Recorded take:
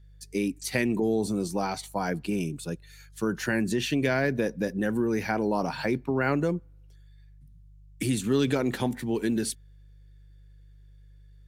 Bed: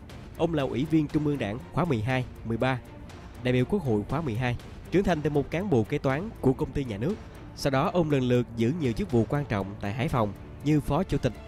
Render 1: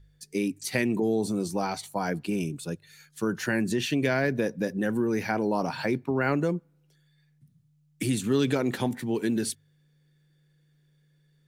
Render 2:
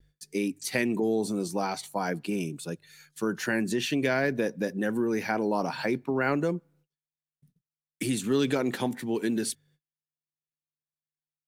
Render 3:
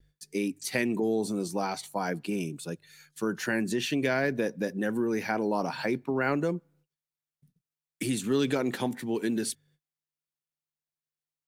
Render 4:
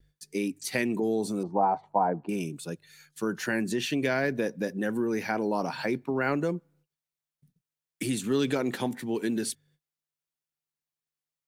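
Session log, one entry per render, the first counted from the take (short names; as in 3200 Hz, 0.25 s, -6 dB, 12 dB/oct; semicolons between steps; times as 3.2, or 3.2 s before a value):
de-hum 50 Hz, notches 2
gate -59 dBFS, range -38 dB; bell 75 Hz -13.5 dB 1.2 oct
gain -1 dB
1.43–2.29 synth low-pass 860 Hz, resonance Q 3.4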